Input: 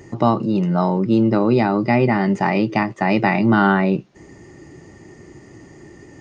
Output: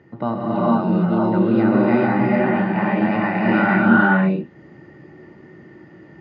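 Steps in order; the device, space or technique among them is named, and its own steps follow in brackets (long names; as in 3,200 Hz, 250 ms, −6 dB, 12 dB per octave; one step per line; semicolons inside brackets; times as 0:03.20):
notch filter 400 Hz, Q 12
0:01.96–0:02.86: Chebyshev low-pass filter 4,000 Hz, order 3
guitar cabinet (loudspeaker in its box 88–3,800 Hz, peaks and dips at 100 Hz −4 dB, 300 Hz −4 dB, 1,500 Hz +9 dB)
parametric band 250 Hz +5.5 dB 2.8 octaves
reverb whose tail is shaped and stops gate 480 ms rising, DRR −6.5 dB
level −11 dB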